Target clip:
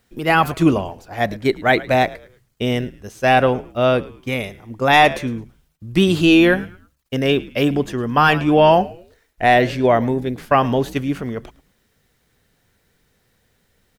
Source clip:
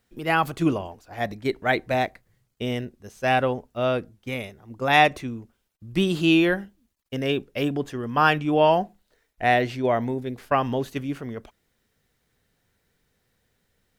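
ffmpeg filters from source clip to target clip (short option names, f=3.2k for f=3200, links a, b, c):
-filter_complex "[0:a]asplit=4[a][b][c][d];[b]adelay=108,afreqshift=-88,volume=-20dB[e];[c]adelay=216,afreqshift=-176,volume=-29.6dB[f];[d]adelay=324,afreqshift=-264,volume=-39.3dB[g];[a][e][f][g]amix=inputs=4:normalize=0,apsyclip=12.5dB,volume=-5dB"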